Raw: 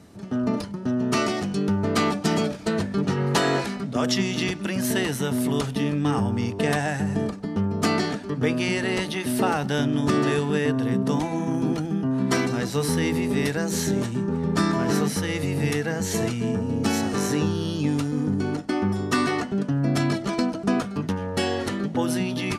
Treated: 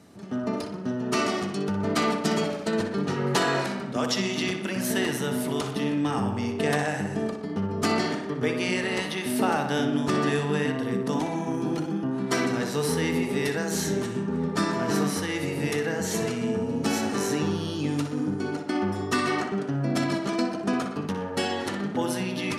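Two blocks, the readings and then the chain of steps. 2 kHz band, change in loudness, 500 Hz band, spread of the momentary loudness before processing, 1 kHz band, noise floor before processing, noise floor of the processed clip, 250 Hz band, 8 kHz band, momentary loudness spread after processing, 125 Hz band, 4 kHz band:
-1.0 dB, -2.5 dB, -1.0 dB, 4 LU, -1.0 dB, -34 dBFS, -34 dBFS, -3.0 dB, -1.5 dB, 4 LU, -5.0 dB, -1.5 dB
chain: high-pass 170 Hz 6 dB/octave; on a send: tape echo 61 ms, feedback 69%, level -6 dB, low-pass 3.9 kHz; on the sum: trim -2 dB

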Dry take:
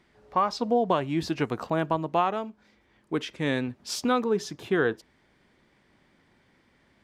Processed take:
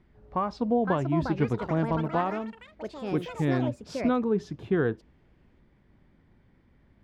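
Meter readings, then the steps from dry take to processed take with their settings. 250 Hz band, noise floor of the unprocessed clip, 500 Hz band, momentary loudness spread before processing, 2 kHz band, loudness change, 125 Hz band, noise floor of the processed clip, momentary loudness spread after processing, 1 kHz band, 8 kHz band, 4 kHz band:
+2.0 dB, -65 dBFS, -1.5 dB, 8 LU, -4.0 dB, -0.5 dB, +5.5 dB, -63 dBFS, 10 LU, -4.0 dB, under -10 dB, -10.0 dB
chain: ever faster or slower copies 618 ms, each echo +6 st, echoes 3, each echo -6 dB; RIAA curve playback; trim -5 dB

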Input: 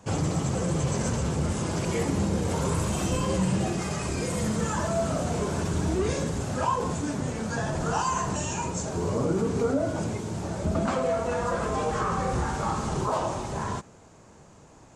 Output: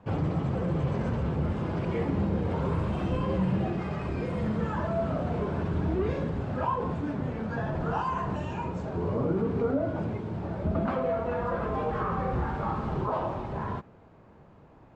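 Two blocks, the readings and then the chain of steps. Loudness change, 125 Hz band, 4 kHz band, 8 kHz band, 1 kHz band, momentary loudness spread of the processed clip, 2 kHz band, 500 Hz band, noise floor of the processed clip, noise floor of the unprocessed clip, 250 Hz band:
-2.0 dB, -1.0 dB, -11.5 dB, under -25 dB, -3.0 dB, 5 LU, -4.5 dB, -2.0 dB, -54 dBFS, -52 dBFS, -1.5 dB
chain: distance through air 410 m; trim -1 dB

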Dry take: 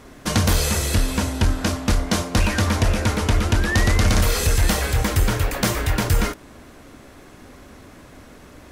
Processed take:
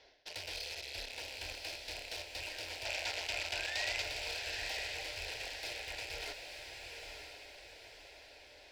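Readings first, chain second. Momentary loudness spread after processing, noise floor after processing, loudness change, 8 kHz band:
16 LU, -57 dBFS, -19.0 dB, -20.5 dB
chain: rattle on loud lows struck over -26 dBFS, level -13 dBFS; resonant high shelf 6.5 kHz -9.5 dB, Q 3; Chebyshev shaper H 6 -20 dB, 7 -20 dB, 8 -17 dB, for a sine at -3.5 dBFS; three-band isolator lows -19 dB, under 590 Hz, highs -21 dB, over 5.5 kHz; reverse; compression 16:1, threshold -35 dBFS, peak gain reduction 18.5 dB; reverse; saturation -37 dBFS, distortion -8 dB; static phaser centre 490 Hz, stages 4; time-frequency box 2.85–4.02 s, 550–8200 Hz +7 dB; on a send: echo that smears into a reverb 921 ms, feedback 44%, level -4.5 dB; on the sum: trim +3 dB

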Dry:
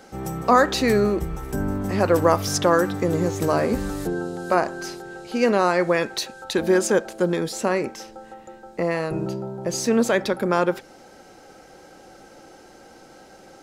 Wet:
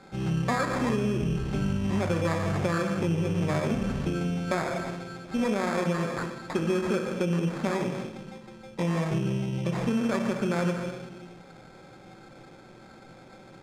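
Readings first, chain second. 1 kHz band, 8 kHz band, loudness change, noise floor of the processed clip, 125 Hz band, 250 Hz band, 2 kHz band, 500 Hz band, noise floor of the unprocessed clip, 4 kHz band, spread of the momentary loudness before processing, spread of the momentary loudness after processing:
-9.5 dB, -12.5 dB, -6.0 dB, -50 dBFS, +1.5 dB, -3.0 dB, -7.0 dB, -9.0 dB, -48 dBFS, -8.5 dB, 11 LU, 10 LU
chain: graphic EQ 125/250/2000 Hz +12/+3/+7 dB; simulated room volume 530 m³, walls mixed, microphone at 1.1 m; sample-rate reducer 2.9 kHz, jitter 0%; Bessel low-pass 5.7 kHz, order 2; dynamic bell 4 kHz, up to -7 dB, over -40 dBFS, Q 2.2; compression, threshold -15 dBFS, peak gain reduction 8.5 dB; trim -8 dB

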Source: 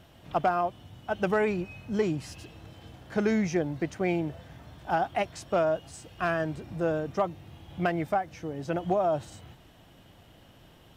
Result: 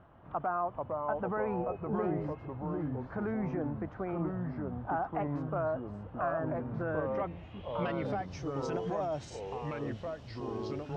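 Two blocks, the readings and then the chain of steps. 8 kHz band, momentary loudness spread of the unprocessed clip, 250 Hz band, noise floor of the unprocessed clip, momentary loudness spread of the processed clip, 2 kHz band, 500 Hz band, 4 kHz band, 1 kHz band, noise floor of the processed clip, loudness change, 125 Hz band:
under -10 dB, 20 LU, -4.0 dB, -56 dBFS, 6 LU, -8.5 dB, -5.0 dB, no reading, -5.0 dB, -49 dBFS, -6.0 dB, -1.5 dB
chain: peak limiter -23 dBFS, peak gain reduction 8.5 dB; low-pass sweep 1.2 kHz -> 5.9 kHz, 6.55–8.49 s; ever faster or slower copies 373 ms, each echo -3 st, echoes 3; trim -4.5 dB

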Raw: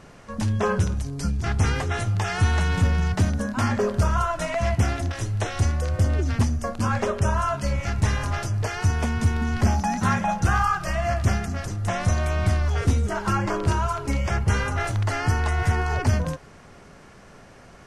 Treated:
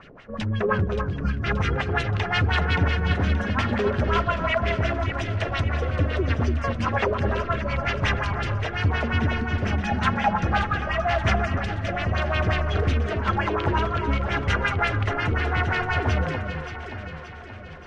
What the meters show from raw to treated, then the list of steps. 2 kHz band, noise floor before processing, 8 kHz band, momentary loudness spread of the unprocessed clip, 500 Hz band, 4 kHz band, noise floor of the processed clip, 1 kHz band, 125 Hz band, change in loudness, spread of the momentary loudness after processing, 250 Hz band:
+4.0 dB, -48 dBFS, -12.5 dB, 4 LU, +2.0 dB, +3.5 dB, -38 dBFS, +1.0 dB, -2.0 dB, 0.0 dB, 5 LU, -0.5 dB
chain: tilt shelf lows -4.5 dB; in parallel at -8 dB: integer overflow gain 17.5 dB; on the sum: rotary cabinet horn 5 Hz, later 0.9 Hz, at 6.22 s; LFO low-pass sine 5.6 Hz 360–3400 Hz; echo whose repeats swap between lows and highs 288 ms, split 1.5 kHz, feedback 72%, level -5.5 dB

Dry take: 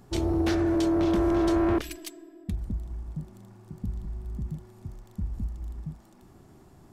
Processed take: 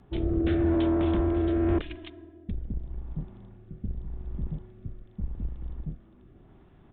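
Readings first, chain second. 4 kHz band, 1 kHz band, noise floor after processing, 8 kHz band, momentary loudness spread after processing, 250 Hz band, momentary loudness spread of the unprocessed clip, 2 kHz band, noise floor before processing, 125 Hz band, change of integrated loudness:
-5.5 dB, -5.0 dB, -55 dBFS, under -35 dB, 20 LU, -1.5 dB, 18 LU, -4.0 dB, -55 dBFS, +1.5 dB, -1.0 dB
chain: octave divider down 2 oct, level -2 dB; resampled via 8 kHz; rotary cabinet horn 0.85 Hz

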